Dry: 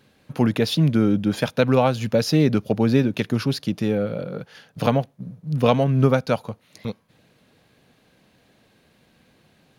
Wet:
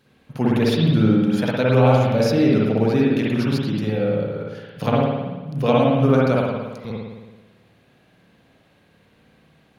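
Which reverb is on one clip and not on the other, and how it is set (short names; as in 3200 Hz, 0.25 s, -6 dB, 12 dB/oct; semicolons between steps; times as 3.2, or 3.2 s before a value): spring tank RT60 1.2 s, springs 55 ms, chirp 60 ms, DRR -5 dB; gain -4 dB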